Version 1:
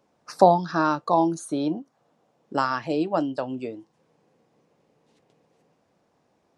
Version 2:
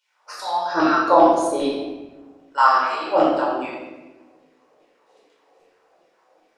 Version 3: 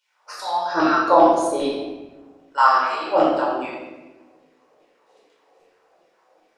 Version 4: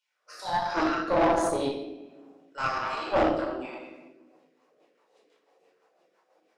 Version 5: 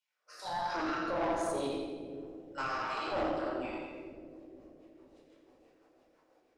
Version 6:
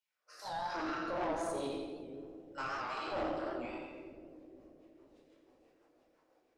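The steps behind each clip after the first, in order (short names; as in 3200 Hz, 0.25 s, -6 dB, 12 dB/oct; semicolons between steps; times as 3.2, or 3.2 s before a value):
Bessel high-pass 230 Hz, order 2; LFO high-pass saw down 2.5 Hz 330–3000 Hz; shoebox room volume 750 m³, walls mixed, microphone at 4.7 m; gain -3.5 dB
bell 280 Hz -2.5 dB 0.22 oct
HPF 140 Hz 24 dB/oct; rotary speaker horn 1.2 Hz, later 6 Hz, at 3.95; tube stage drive 17 dB, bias 0.75
limiter -23 dBFS, peak gain reduction 9 dB; AGC gain up to 5 dB; on a send: split-band echo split 470 Hz, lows 0.475 s, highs 86 ms, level -8 dB; on the sum: gain -7.5 dB
record warp 78 rpm, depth 100 cents; gain -3.5 dB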